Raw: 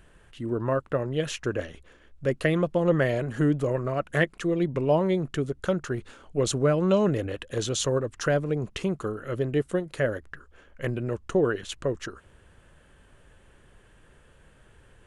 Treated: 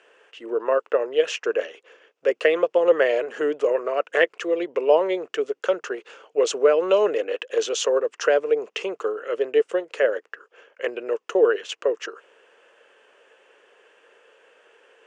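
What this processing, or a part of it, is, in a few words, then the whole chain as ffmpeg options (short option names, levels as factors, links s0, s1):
phone speaker on a table: -af "highpass=f=420:w=0.5412,highpass=f=420:w=1.3066,equalizer=f=460:t=q:w=4:g=8,equalizer=f=2700:t=q:w=4:g=6,equalizer=f=4000:t=q:w=4:g=-6,lowpass=f=6700:w=0.5412,lowpass=f=6700:w=1.3066,volume=1.58"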